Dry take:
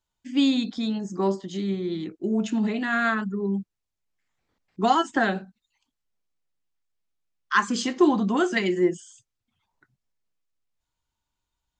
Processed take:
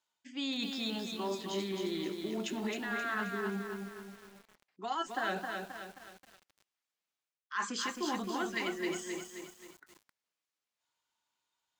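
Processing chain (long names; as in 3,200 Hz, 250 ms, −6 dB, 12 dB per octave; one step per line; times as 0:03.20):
meter weighting curve A
reversed playback
downward compressor 6 to 1, threshold −35 dBFS, peak gain reduction 19 dB
reversed playback
feedback echo at a low word length 265 ms, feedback 55%, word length 9 bits, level −4 dB
level +1 dB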